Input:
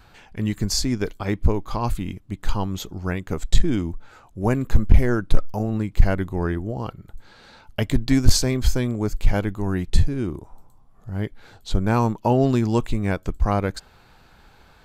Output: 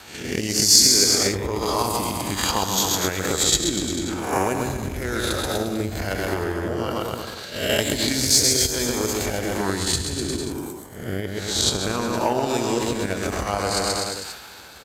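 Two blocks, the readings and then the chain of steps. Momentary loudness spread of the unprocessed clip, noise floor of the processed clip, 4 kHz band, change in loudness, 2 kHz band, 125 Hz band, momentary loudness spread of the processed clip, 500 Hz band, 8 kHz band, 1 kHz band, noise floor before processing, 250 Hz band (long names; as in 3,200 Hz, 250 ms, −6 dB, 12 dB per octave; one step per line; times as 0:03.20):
12 LU, −39 dBFS, +12.0 dB, +2.5 dB, +5.5 dB, −7.0 dB, 13 LU, +2.5 dB, +14.0 dB, +3.5 dB, −53 dBFS, −2.5 dB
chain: peak hold with a rise ahead of every peak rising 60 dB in 0.71 s
high-pass filter 51 Hz 24 dB per octave
parametric band 75 Hz +2.5 dB
double-tracking delay 21 ms −13 dB
in parallel at −12 dB: sine wavefolder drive 10 dB, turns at −0.5 dBFS
on the sum: rotating-speaker cabinet horn 1.1 Hz
on a send: bouncing-ball delay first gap 130 ms, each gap 0.9×, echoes 5
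on the sum: transient designer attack +10 dB, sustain +6 dB
downward compressor 6 to 1, threshold −17 dBFS, peak gain reduction 16.5 dB
bass and treble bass −13 dB, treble +11 dB
level +1.5 dB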